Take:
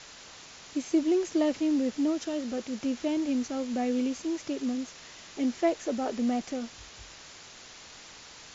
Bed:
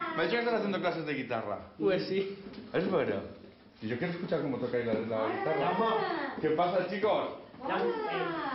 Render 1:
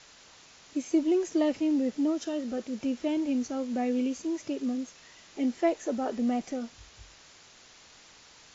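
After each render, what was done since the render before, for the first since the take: noise print and reduce 6 dB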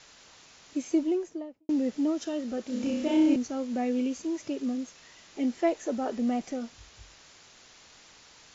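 0.86–1.69 s: studio fade out; 2.63–3.36 s: flutter echo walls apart 5.5 m, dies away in 0.94 s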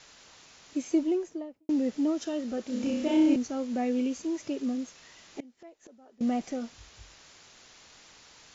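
5.40–6.21 s: inverted gate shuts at -32 dBFS, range -25 dB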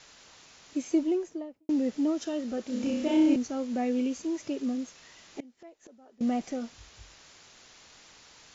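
no audible change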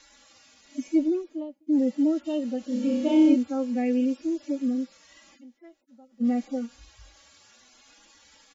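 harmonic-percussive separation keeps harmonic; comb 3.6 ms, depth 78%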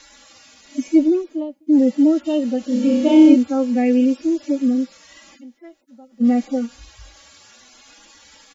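trim +8.5 dB

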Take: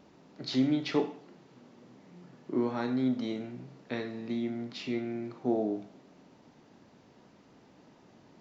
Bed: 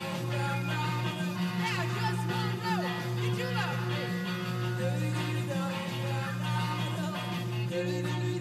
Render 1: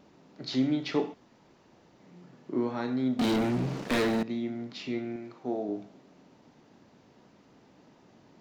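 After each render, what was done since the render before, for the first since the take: 1.14–2.00 s: room tone; 3.19–4.23 s: waveshaping leveller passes 5; 5.16–5.69 s: bass shelf 350 Hz -7.5 dB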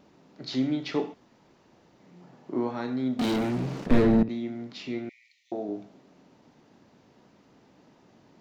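2.20–2.71 s: peaking EQ 780 Hz +7 dB; 3.86–4.29 s: tilt EQ -4 dB/octave; 5.09–5.52 s: brick-wall FIR high-pass 1.8 kHz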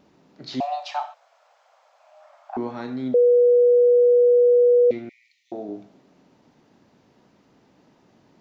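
0.60–2.57 s: frequency shift +440 Hz; 3.14–4.91 s: bleep 486 Hz -12 dBFS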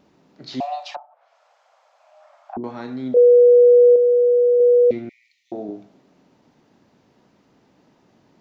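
0.93–2.64 s: low-pass that closes with the level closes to 330 Hz, closed at -26 dBFS; 3.16–3.96 s: comb 6 ms, depth 80%; 4.60–5.71 s: bass shelf 390 Hz +5.5 dB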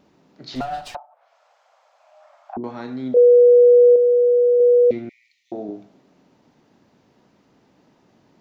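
0.55–0.95 s: comb filter that takes the minimum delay 8.2 ms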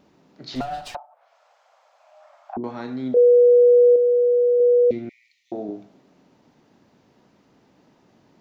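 dynamic bell 1.2 kHz, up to -7 dB, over -30 dBFS, Q 0.71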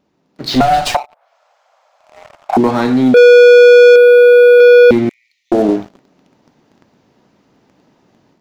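waveshaping leveller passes 3; level rider gain up to 10 dB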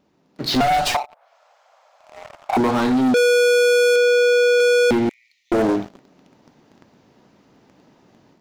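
saturation -14.5 dBFS, distortion -10 dB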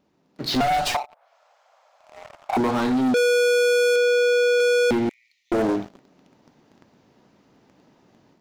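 trim -3.5 dB

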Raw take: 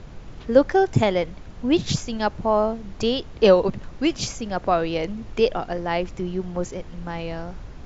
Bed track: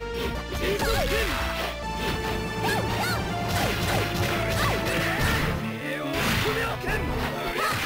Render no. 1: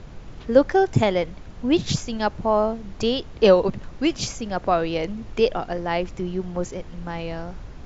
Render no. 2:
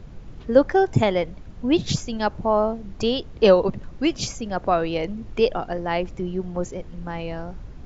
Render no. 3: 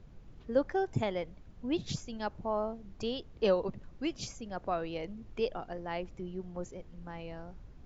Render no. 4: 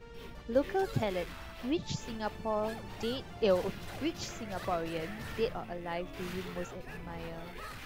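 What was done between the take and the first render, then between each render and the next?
no audible change
noise reduction 6 dB, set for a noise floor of -41 dBFS
trim -13 dB
add bed track -19.5 dB

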